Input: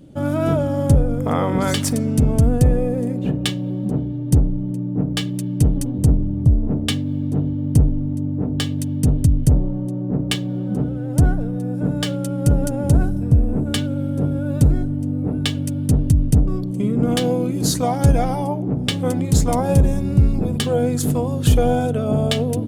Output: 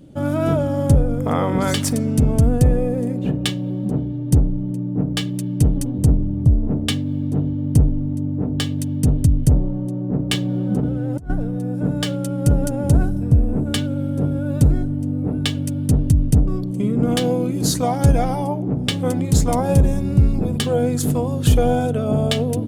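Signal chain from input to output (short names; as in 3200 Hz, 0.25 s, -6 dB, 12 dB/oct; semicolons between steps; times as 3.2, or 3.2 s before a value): 10.33–11.3 negative-ratio compressor -20 dBFS, ratio -0.5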